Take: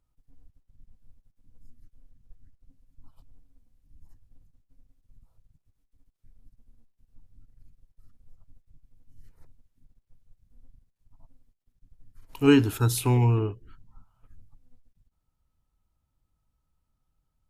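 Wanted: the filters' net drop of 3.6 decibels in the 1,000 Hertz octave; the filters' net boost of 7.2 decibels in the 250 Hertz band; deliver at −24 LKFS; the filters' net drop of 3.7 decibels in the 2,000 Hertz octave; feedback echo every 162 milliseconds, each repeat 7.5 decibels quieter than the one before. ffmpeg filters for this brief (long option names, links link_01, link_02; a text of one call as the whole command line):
ffmpeg -i in.wav -af "equalizer=frequency=250:width_type=o:gain=8.5,equalizer=frequency=1000:width_type=o:gain=-4,equalizer=frequency=2000:width_type=o:gain=-4,aecho=1:1:162|324|486|648|810:0.422|0.177|0.0744|0.0312|0.0131,volume=-5.5dB" out.wav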